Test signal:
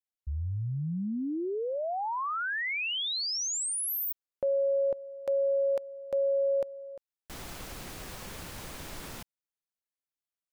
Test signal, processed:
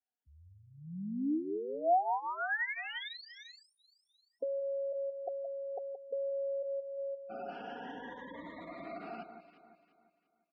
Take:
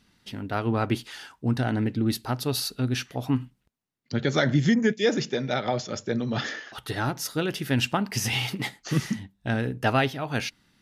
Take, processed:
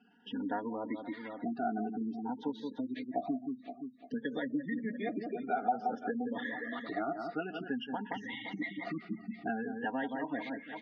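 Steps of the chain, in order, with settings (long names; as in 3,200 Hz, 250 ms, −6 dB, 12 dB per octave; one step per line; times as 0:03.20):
rippled gain that drifts along the octave scale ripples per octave 1.1, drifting +0.53 Hz, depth 13 dB
delay that swaps between a low-pass and a high-pass 173 ms, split 1,800 Hz, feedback 60%, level −7.5 dB
downward compressor 10 to 1, threshold −30 dBFS
gate on every frequency bin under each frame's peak −20 dB strong
loudspeaker in its box 310–2,500 Hz, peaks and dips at 310 Hz +5 dB, 490 Hz −8 dB, 700 Hz +5 dB, 1,100 Hz −8 dB, 1,500 Hz −3 dB, 2,400 Hz −10 dB
comb filter 4.2 ms, depth 70%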